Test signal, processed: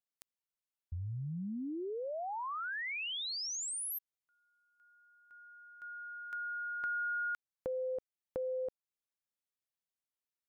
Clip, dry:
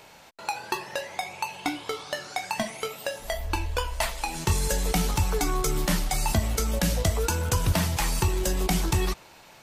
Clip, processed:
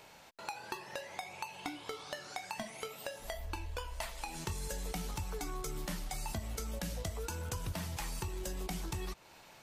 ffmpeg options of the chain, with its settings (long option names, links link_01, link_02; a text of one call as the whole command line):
ffmpeg -i in.wav -af "acompressor=threshold=-34dB:ratio=2.5,volume=-6dB" out.wav